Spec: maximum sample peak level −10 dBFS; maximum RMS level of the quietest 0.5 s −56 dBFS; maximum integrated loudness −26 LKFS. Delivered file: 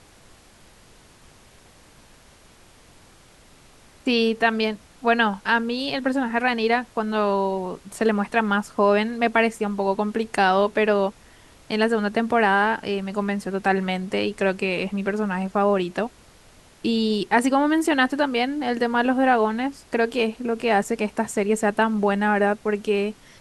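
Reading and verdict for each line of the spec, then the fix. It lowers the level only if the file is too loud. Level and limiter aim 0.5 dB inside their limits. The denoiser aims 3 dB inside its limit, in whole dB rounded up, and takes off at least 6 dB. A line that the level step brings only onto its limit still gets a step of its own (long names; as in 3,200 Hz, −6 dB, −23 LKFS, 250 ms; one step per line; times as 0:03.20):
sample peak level −5.5 dBFS: out of spec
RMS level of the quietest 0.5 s −52 dBFS: out of spec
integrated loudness −22.5 LKFS: out of spec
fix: broadband denoise 6 dB, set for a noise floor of −52 dBFS
level −4 dB
brickwall limiter −10.5 dBFS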